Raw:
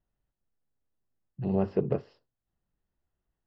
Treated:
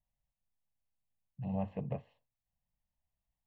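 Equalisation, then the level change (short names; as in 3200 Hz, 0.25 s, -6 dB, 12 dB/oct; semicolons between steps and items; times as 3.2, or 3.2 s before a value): fixed phaser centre 1400 Hz, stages 6; -4.5 dB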